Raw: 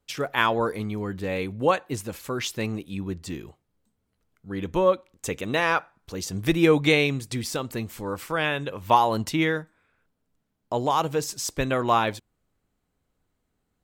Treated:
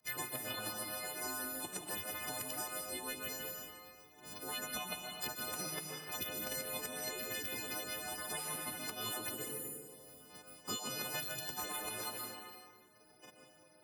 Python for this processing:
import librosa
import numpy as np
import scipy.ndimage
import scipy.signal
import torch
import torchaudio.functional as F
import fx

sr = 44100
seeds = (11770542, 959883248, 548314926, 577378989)

y = fx.freq_snap(x, sr, grid_st=3)
y = fx.graphic_eq_15(y, sr, hz=(250, 1000, 4000), db=(-7, 7, 9), at=(0.54, 2.68))
y = fx.spec_erase(y, sr, start_s=9.29, length_s=0.4, low_hz=580.0, high_hz=6000.0)
y = fx.over_compress(y, sr, threshold_db=-22.0, ratio=-0.5)
y = fx.spec_gate(y, sr, threshold_db=-15, keep='weak')
y = scipy.signal.sosfilt(scipy.signal.butter(2, 86.0, 'highpass', fs=sr, output='sos'), y)
y = fx.high_shelf(y, sr, hz=6500.0, db=5.5)
y = fx.notch(y, sr, hz=3300.0, q=12.0)
y = fx.rev_plate(y, sr, seeds[0], rt60_s=0.89, hf_ratio=0.9, predelay_ms=110, drr_db=3.0)
y = fx.band_squash(y, sr, depth_pct=100)
y = F.gain(torch.from_numpy(y), -5.0).numpy()